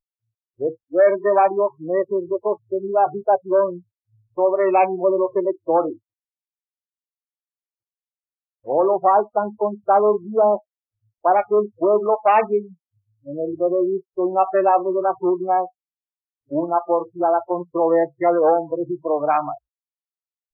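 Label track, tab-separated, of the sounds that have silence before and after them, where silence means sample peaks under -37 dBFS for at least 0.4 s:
0.600000	3.790000	sound
4.380000	5.950000	sound
8.660000	10.590000	sound
11.240000	12.670000	sound
13.270000	15.680000	sound
16.510000	19.570000	sound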